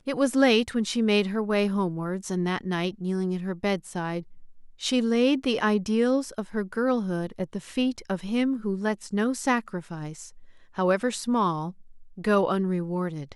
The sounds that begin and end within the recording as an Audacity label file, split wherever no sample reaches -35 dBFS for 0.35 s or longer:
4.810000	10.280000	sound
10.780000	11.710000	sound